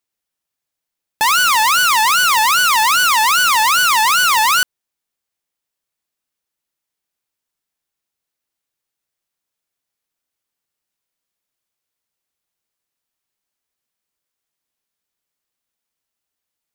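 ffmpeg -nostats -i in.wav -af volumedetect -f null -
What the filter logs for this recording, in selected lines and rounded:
mean_volume: -20.0 dB
max_volume: -8.4 dB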